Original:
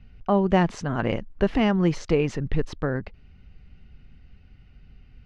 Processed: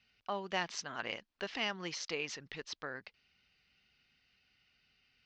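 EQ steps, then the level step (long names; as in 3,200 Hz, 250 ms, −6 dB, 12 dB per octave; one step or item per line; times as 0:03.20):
resonant band-pass 5,600 Hz, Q 1.7
high-frequency loss of the air 120 metres
+8.5 dB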